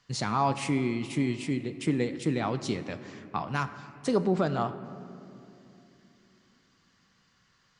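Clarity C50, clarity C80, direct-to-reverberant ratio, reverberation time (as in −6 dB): 12.0 dB, 13.0 dB, 11.0 dB, 2.8 s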